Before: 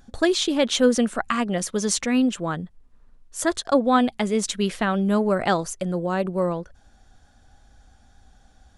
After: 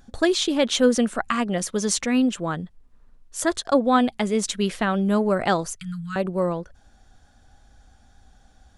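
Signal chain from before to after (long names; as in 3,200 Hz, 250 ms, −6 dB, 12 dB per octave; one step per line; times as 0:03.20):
0:02.56–0:03.40: dynamic equaliser 3,700 Hz, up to +4 dB, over −59 dBFS, Q 0.78
0:05.75–0:06.16: Chebyshev band-stop filter 170–1,300 Hz, order 4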